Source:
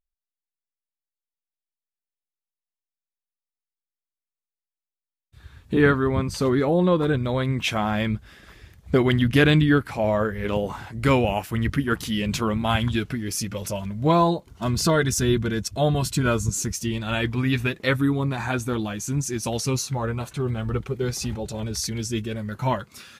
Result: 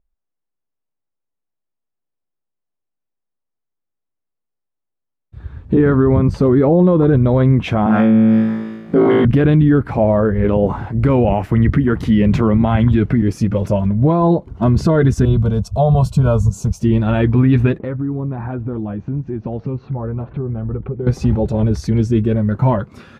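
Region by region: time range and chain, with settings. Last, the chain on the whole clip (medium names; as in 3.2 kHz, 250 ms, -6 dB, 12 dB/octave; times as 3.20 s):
7.86–9.25 s: high-pass 170 Hz 24 dB/octave + flutter echo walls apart 3.1 m, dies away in 1.1 s
11.28–13.22 s: peaking EQ 2 kHz +6 dB 0.28 oct + three bands compressed up and down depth 40%
15.25–16.80 s: treble shelf 5.6 kHz +5 dB + upward compressor, threshold -27 dBFS + static phaser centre 760 Hz, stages 4
17.78–21.07 s: low-pass 3.6 kHz 24 dB/octave + treble shelf 2.3 kHz -12 dB + compression 4:1, threshold -35 dBFS
whole clip: low-pass 1.9 kHz 6 dB/octave; tilt shelf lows +7.5 dB, about 1.3 kHz; peak limiter -12.5 dBFS; trim +7.5 dB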